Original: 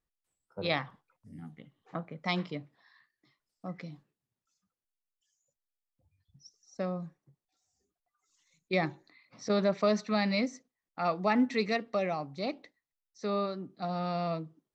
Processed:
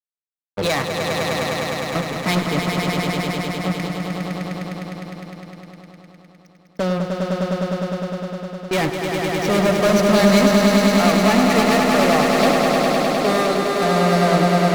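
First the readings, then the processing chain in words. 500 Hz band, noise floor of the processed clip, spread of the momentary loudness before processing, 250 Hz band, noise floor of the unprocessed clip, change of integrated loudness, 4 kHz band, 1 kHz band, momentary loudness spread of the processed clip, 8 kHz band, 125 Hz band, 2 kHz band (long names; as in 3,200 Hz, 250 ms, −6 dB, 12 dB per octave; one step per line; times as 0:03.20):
+16.0 dB, −51 dBFS, 20 LU, +16.0 dB, below −85 dBFS, +14.0 dB, +17.0 dB, +16.5 dB, 14 LU, can't be measured, +18.0 dB, +16.5 dB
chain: fuzz pedal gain 36 dB, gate −44 dBFS
echo that builds up and dies away 102 ms, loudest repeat 5, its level −5 dB
level −3.5 dB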